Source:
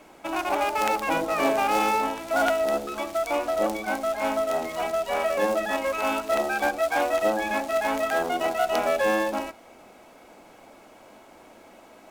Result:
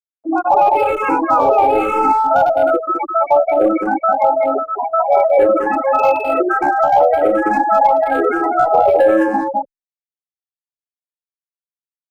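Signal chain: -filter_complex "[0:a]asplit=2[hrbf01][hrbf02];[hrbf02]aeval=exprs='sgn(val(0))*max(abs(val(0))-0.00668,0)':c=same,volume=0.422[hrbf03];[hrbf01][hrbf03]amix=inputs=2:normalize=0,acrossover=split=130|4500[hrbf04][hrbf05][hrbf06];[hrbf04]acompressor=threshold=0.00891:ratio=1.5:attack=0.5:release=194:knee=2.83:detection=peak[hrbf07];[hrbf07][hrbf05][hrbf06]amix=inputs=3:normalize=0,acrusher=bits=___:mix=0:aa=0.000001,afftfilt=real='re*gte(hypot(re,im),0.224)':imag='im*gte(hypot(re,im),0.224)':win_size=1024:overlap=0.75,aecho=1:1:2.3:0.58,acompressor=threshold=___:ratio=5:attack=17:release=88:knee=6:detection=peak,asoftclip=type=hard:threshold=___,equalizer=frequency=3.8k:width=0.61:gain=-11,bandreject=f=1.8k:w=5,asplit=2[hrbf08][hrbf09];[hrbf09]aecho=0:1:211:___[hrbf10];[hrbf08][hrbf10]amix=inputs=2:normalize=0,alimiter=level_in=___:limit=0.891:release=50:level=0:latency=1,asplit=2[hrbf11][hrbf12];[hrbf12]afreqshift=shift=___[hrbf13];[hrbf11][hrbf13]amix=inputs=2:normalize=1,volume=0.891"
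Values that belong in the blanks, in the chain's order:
6, 0.0794, 0.112, 0.631, 7.5, -1.1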